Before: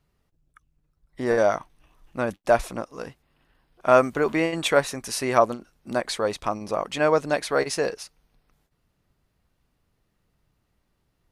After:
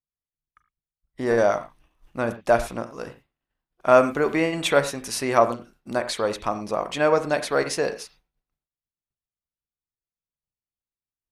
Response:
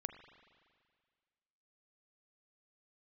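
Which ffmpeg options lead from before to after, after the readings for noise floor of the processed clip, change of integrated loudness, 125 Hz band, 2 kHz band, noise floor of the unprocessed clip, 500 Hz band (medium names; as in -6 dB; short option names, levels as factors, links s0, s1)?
under -85 dBFS, +1.0 dB, +1.0 dB, +0.5 dB, -73 dBFS, +1.0 dB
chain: -filter_complex "[0:a]agate=range=0.0224:threshold=0.00316:ratio=3:detection=peak[s0];[1:a]atrim=start_sample=2205,atrim=end_sample=6174,asetrate=48510,aresample=44100[s1];[s0][s1]afir=irnorm=-1:irlink=0,volume=1.68"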